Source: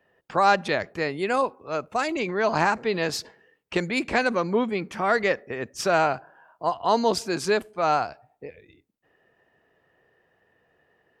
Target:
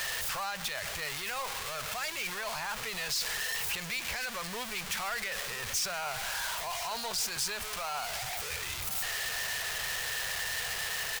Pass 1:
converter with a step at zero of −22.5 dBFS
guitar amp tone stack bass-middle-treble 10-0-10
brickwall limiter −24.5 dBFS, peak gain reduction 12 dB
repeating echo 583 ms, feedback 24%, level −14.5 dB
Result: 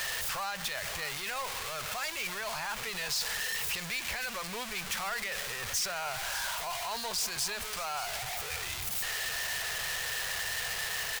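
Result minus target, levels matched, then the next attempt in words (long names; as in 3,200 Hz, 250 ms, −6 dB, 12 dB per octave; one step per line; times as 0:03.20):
echo 439 ms early
converter with a step at zero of −22.5 dBFS
guitar amp tone stack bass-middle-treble 10-0-10
brickwall limiter −24.5 dBFS, peak gain reduction 12 dB
repeating echo 1,022 ms, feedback 24%, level −14.5 dB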